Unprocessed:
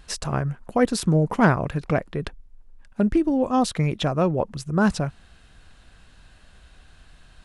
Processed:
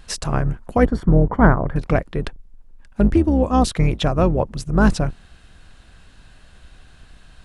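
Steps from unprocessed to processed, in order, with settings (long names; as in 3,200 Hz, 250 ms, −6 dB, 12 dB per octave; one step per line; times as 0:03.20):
sub-octave generator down 2 octaves, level 0 dB
0:00.85–0:01.76: Savitzky-Golay smoothing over 41 samples
level +3 dB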